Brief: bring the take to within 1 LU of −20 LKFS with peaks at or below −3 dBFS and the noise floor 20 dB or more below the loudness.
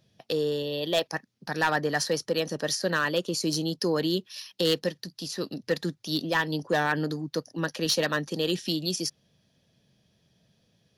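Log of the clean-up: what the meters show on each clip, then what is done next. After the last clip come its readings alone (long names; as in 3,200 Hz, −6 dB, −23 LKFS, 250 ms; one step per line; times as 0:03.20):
share of clipped samples 0.3%; peaks flattened at −17.0 dBFS; integrated loudness −28.5 LKFS; sample peak −17.0 dBFS; target loudness −20.0 LKFS
→ clipped peaks rebuilt −17 dBFS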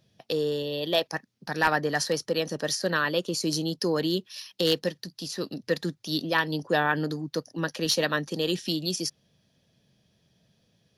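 share of clipped samples 0.0%; integrated loudness −28.0 LKFS; sample peak −8.0 dBFS; target loudness −20.0 LKFS
→ level +8 dB
brickwall limiter −3 dBFS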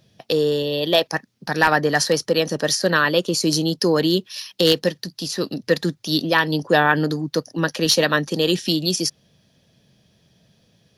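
integrated loudness −20.0 LKFS; sample peak −3.0 dBFS; background noise floor −61 dBFS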